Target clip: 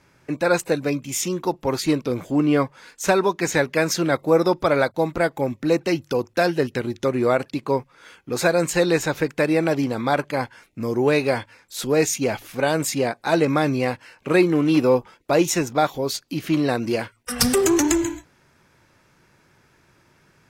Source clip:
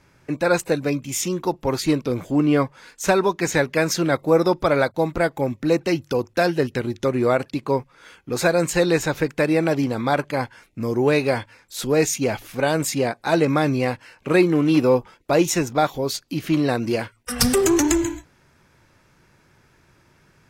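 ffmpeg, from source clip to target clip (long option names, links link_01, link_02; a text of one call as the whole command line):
ffmpeg -i in.wav -af "lowshelf=frequency=88:gain=-7" out.wav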